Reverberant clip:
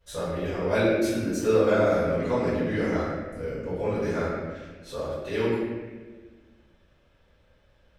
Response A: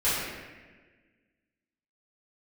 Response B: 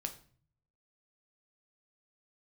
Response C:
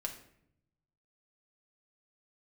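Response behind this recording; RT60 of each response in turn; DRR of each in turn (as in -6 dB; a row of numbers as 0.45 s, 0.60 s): A; 1.4 s, 0.45 s, 0.70 s; -13.5 dB, 5.0 dB, 1.0 dB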